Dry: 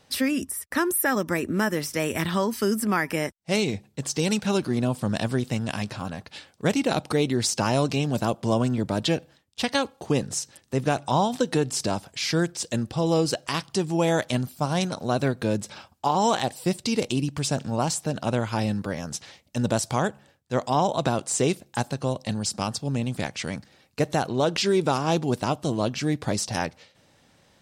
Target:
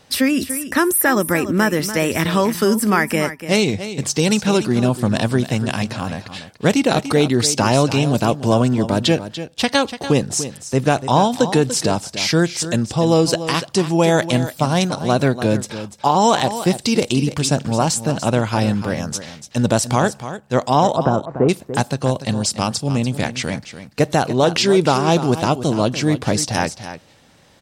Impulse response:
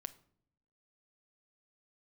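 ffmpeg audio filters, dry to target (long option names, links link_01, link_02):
-filter_complex "[0:a]asettb=1/sr,asplit=3[link_01][link_02][link_03];[link_01]atrim=end=20.964[link_04];[link_02]atrim=start=20.96:end=21.49,asetpts=PTS-STARTPTS,afade=type=in:duration=0.004:curve=qsin,afade=type=out:start_time=0.526:duration=0.004:curve=qsin,lowpass=frequency=1400:width=0.5412,lowpass=frequency=1400:width=1.3066[link_05];[link_03]atrim=start=21.486[link_06];[link_04][link_05]acrossfade=duration=0.004:curve1=hsin:curve2=qsin[link_07];[link_07][link_06]acrossfade=duration=0.004:curve1=qsin:curve2=hsin,aecho=1:1:291:0.251,volume=7.5dB"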